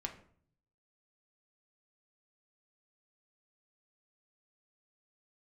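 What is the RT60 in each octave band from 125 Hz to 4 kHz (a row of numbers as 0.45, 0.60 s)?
1.0, 0.75, 0.60, 0.50, 0.45, 0.35 s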